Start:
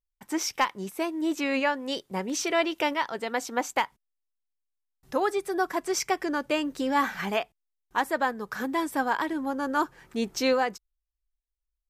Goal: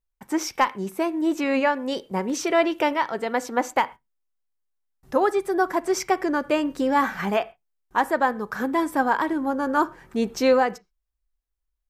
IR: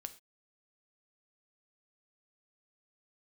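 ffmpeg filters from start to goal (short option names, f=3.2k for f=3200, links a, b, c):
-filter_complex "[0:a]asplit=2[a][b];[1:a]atrim=start_sample=2205,lowpass=2.1k[c];[b][c]afir=irnorm=-1:irlink=0,volume=3dB[d];[a][d]amix=inputs=2:normalize=0"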